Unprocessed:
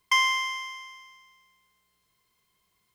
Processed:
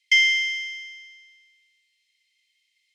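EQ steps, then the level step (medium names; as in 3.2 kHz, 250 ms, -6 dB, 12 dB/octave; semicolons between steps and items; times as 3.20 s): steep high-pass 1.9 kHz 96 dB/octave; distance through air 69 m; treble shelf 8.8 kHz -7 dB; +8.0 dB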